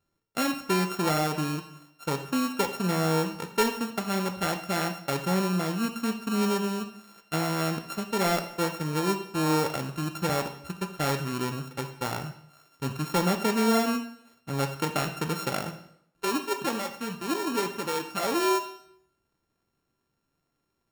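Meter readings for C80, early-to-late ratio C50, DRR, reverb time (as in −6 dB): 13.5 dB, 10.5 dB, 6.5 dB, 0.70 s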